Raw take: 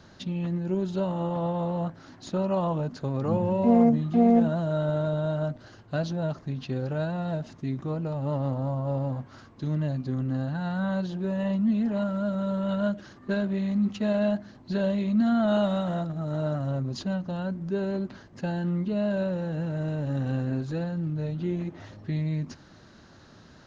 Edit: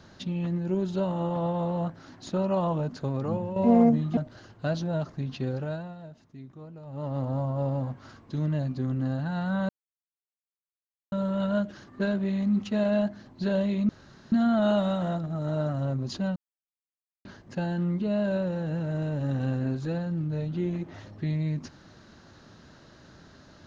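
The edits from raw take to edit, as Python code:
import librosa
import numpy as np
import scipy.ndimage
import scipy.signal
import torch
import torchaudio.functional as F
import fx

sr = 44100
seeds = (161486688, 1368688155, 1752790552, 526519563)

y = fx.edit(x, sr, fx.fade_out_to(start_s=3.09, length_s=0.47, floor_db=-10.0),
    fx.cut(start_s=4.17, length_s=1.29),
    fx.fade_down_up(start_s=6.78, length_s=1.82, db=-14.0, fade_s=0.48),
    fx.silence(start_s=10.98, length_s=1.43),
    fx.insert_room_tone(at_s=15.18, length_s=0.43),
    fx.silence(start_s=17.22, length_s=0.89), tone=tone)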